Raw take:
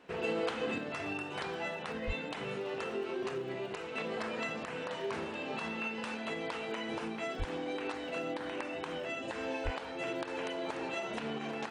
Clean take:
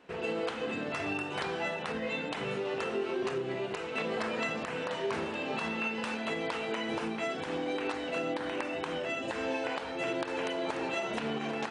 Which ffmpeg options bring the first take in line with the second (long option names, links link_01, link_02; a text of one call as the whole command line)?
ffmpeg -i in.wav -filter_complex "[0:a]adeclick=threshold=4,asplit=3[link_01][link_02][link_03];[link_01]afade=type=out:start_time=2.06:duration=0.02[link_04];[link_02]highpass=frequency=140:width=0.5412,highpass=frequency=140:width=1.3066,afade=type=in:start_time=2.06:duration=0.02,afade=type=out:start_time=2.18:duration=0.02[link_05];[link_03]afade=type=in:start_time=2.18:duration=0.02[link_06];[link_04][link_05][link_06]amix=inputs=3:normalize=0,asplit=3[link_07][link_08][link_09];[link_07]afade=type=out:start_time=7.38:duration=0.02[link_10];[link_08]highpass=frequency=140:width=0.5412,highpass=frequency=140:width=1.3066,afade=type=in:start_time=7.38:duration=0.02,afade=type=out:start_time=7.5:duration=0.02[link_11];[link_09]afade=type=in:start_time=7.5:duration=0.02[link_12];[link_10][link_11][link_12]amix=inputs=3:normalize=0,asplit=3[link_13][link_14][link_15];[link_13]afade=type=out:start_time=9.64:duration=0.02[link_16];[link_14]highpass=frequency=140:width=0.5412,highpass=frequency=140:width=1.3066,afade=type=in:start_time=9.64:duration=0.02,afade=type=out:start_time=9.76:duration=0.02[link_17];[link_15]afade=type=in:start_time=9.76:duration=0.02[link_18];[link_16][link_17][link_18]amix=inputs=3:normalize=0,asetnsamples=nb_out_samples=441:pad=0,asendcmd='0.78 volume volume 4dB',volume=0dB" out.wav